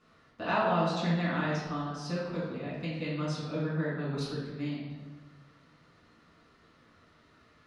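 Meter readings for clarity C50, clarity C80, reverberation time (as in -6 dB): 0.0 dB, 3.0 dB, 1.4 s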